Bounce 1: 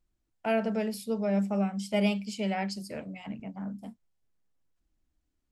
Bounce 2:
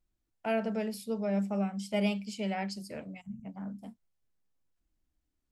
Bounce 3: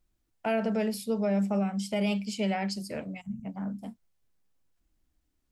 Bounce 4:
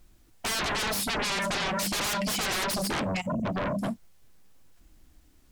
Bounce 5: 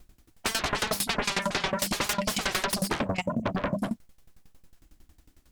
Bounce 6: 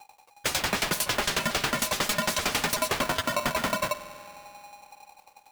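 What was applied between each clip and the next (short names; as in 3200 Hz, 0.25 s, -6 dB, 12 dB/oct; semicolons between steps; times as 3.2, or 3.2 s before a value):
spectral gain 3.21–3.45, 240–5700 Hz -28 dB; gain -3 dB
limiter -26 dBFS, peak gain reduction 6.5 dB; gain +5.5 dB
sine folder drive 19 dB, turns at -20 dBFS; gain -6 dB
dB-ramp tremolo decaying 11 Hz, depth 19 dB; gain +6.5 dB
spring tank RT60 2.8 s, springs 48 ms, chirp 30 ms, DRR 13 dB; polarity switched at an audio rate 820 Hz; gain +1 dB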